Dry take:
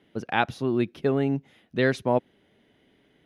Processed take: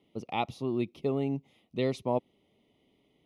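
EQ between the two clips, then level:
Butterworth band-reject 1,600 Hz, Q 1.9
−6.0 dB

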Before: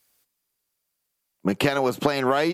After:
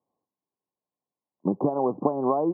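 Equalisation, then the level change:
high-pass filter 140 Hz 12 dB per octave
Chebyshev low-pass with heavy ripple 1,100 Hz, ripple 3 dB
0.0 dB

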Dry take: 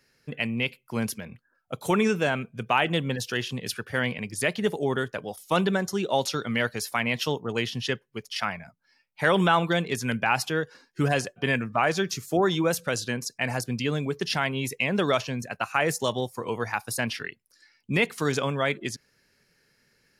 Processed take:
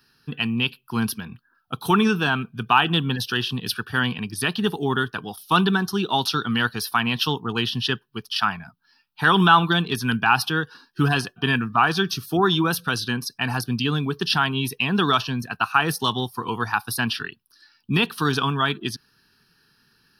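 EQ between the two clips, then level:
low-shelf EQ 130 Hz −7 dB
phaser with its sweep stopped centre 2,100 Hz, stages 6
+9.0 dB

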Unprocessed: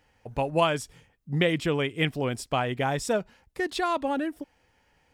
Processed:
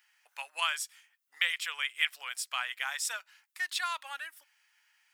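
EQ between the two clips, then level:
high-pass filter 1,300 Hz 24 dB per octave
high-shelf EQ 10,000 Hz +8.5 dB
0.0 dB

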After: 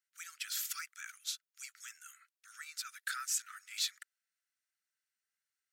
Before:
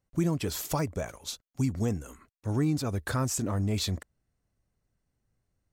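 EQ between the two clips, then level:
Butterworth high-pass 1,300 Hz 96 dB per octave
−1.5 dB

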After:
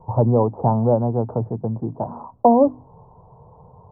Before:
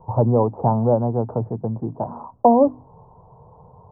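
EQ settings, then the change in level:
high-frequency loss of the air 310 metres
+1.0 dB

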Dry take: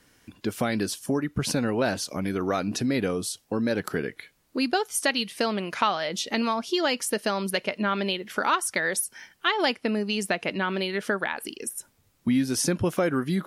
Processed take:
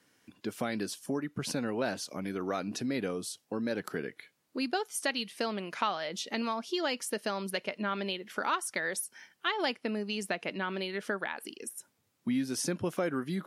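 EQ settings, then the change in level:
high-pass filter 140 Hz 12 dB per octave
high-shelf EQ 12,000 Hz −3.5 dB
−7.0 dB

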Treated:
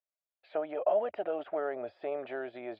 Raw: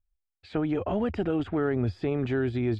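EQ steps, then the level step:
high-pass with resonance 610 Hz, resonance Q 6.6
high-frequency loss of the air 470 metres
high-shelf EQ 2,800 Hz +11 dB
−7.0 dB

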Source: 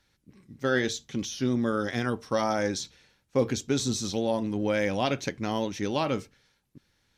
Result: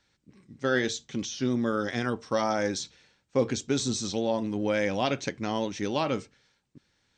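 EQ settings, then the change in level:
linear-phase brick-wall low-pass 8,900 Hz
low-shelf EQ 69 Hz −8.5 dB
0.0 dB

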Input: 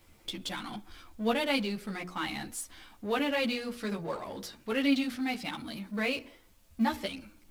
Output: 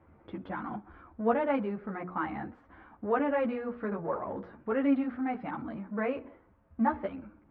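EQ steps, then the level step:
high-pass filter 57 Hz
low-pass filter 1,500 Hz 24 dB per octave
dynamic equaliser 180 Hz, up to −5 dB, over −42 dBFS, Q 0.77
+4.0 dB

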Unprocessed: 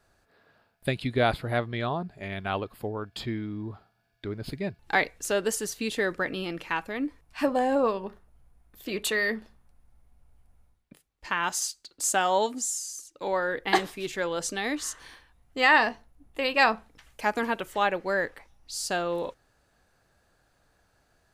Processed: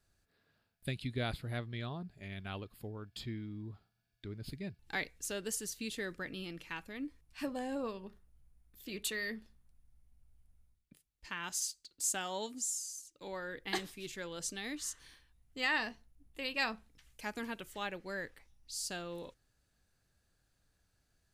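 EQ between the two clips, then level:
parametric band 790 Hz −12 dB 2.7 octaves
−5.5 dB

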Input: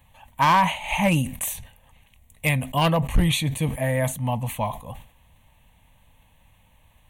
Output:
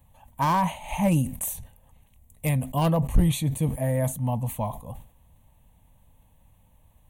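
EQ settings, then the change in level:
parametric band 2,400 Hz −12.5 dB 2.3 octaves
0.0 dB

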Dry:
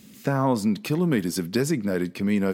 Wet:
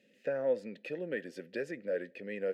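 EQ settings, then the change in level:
dynamic equaliser 1,400 Hz, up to +5 dB, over −41 dBFS, Q 1.9
formant filter e
0.0 dB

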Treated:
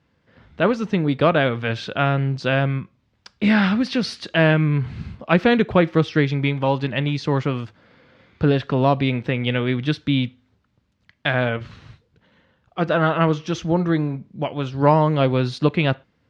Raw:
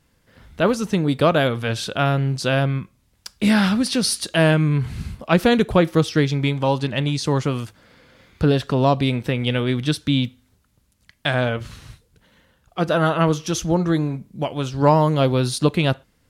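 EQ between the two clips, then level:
high-pass filter 83 Hz
dynamic equaliser 2,100 Hz, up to +5 dB, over −37 dBFS, Q 1.4
high-frequency loss of the air 190 metres
0.0 dB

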